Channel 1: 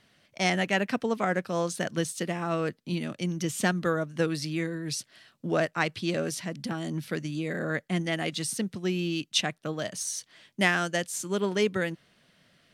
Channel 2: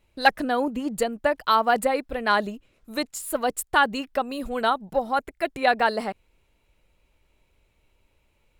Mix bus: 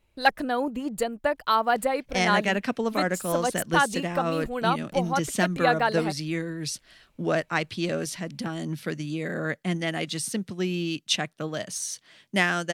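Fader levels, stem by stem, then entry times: +1.0, −2.5 decibels; 1.75, 0.00 seconds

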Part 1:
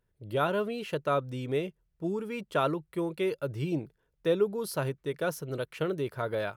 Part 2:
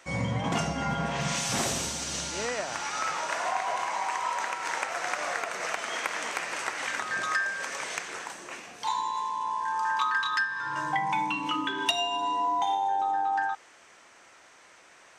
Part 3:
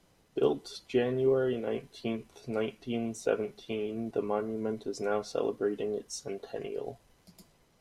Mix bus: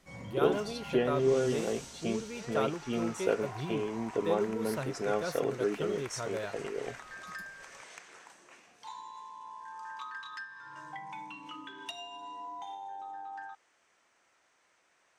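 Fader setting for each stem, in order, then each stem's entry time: −6.0, −15.5, −0.5 decibels; 0.00, 0.00, 0.00 seconds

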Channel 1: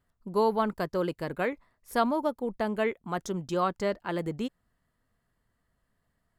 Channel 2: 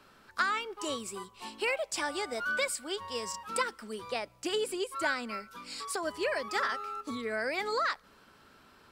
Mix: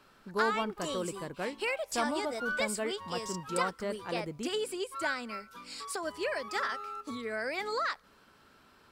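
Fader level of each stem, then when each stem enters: −7.0, −2.0 decibels; 0.00, 0.00 seconds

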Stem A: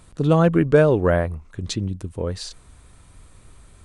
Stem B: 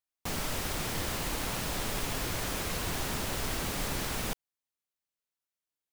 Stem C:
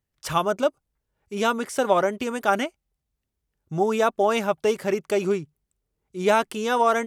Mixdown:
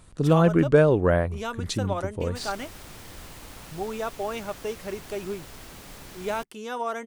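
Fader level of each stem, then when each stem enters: −2.5, −10.5, −10.0 decibels; 0.00, 2.10, 0.00 seconds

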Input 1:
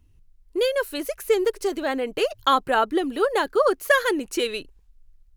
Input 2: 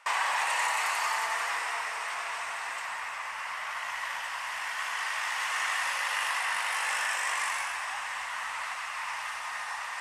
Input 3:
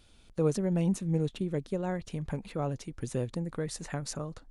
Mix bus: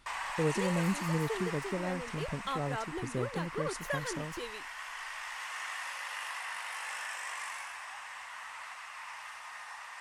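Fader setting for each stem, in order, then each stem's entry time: −17.5, −9.5, −3.5 decibels; 0.00, 0.00, 0.00 seconds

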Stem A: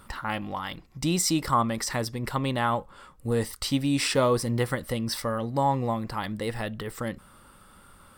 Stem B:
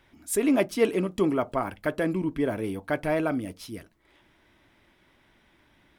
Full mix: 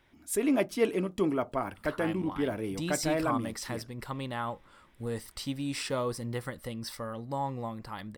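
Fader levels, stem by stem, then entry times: −9.0, −4.0 decibels; 1.75, 0.00 seconds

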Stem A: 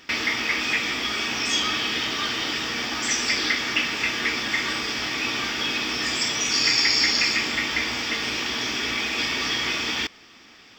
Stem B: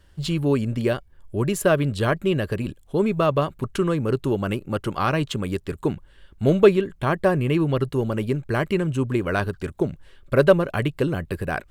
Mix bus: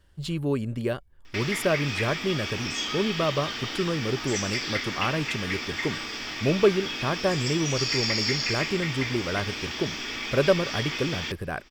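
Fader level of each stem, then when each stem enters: −7.0, −5.5 decibels; 1.25, 0.00 seconds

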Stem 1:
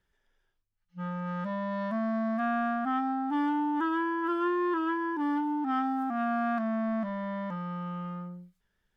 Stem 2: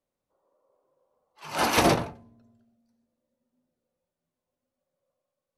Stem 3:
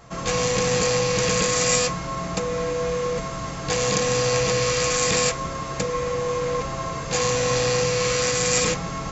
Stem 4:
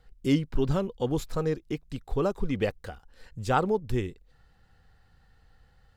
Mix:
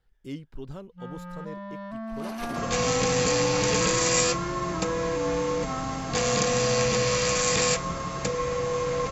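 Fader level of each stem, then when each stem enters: −5.5, −17.0, −2.5, −13.0 decibels; 0.00, 0.65, 2.45, 0.00 seconds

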